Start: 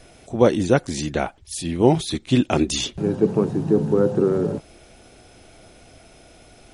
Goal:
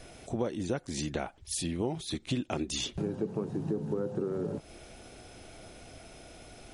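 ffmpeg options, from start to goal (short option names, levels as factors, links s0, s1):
-af "acompressor=threshold=0.0355:ratio=5,volume=0.841"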